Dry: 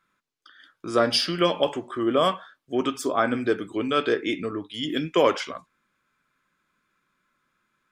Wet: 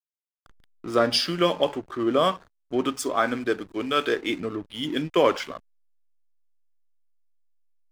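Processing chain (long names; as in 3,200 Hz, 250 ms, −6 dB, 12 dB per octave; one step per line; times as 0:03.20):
0:02.95–0:04.30: spectral tilt +1.5 dB per octave
slack as between gear wheels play −35.5 dBFS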